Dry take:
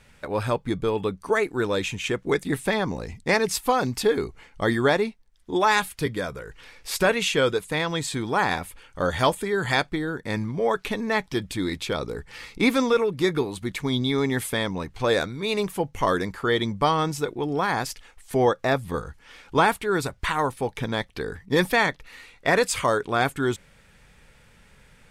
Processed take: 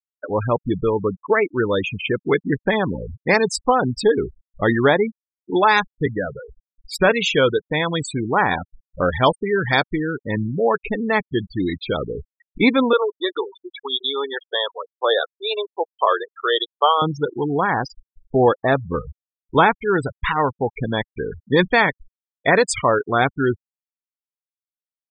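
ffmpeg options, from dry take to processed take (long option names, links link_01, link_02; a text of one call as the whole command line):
ffmpeg -i in.wav -filter_complex "[0:a]asettb=1/sr,asplit=3[link_01][link_02][link_03];[link_01]atrim=end=12.934[link_04];[link_02]atrim=start=12.93:end=17.02,asetpts=PTS-STARTPTS,afade=type=in:duration=0.004:curve=qsin,afade=type=out:start_time=4.086:duration=0.004:curve=qsin,highpass=frequency=440:width=0.5412,highpass=frequency=440:width=1.3066,equalizer=frequency=1200:width_type=q:width=4:gain=3,equalizer=frequency=2200:width_type=q:width=4:gain=-10,equalizer=frequency=3300:width_type=q:width=4:gain=6,lowpass=frequency=4100:width=0.5412,lowpass=frequency=4100:width=1.3066[link_05];[link_03]atrim=start=17.016[link_06];[link_04][link_05]acrossfade=duration=0.004:curve1=hsin:curve2=qsin[link_07];[link_07][link_06]acrossfade=duration=0.004:curve1=qsin:curve2=hsin,afftfilt=real='re*gte(hypot(re,im),0.0708)':imag='im*gte(hypot(re,im),0.0708)':win_size=1024:overlap=0.75,volume=5dB" out.wav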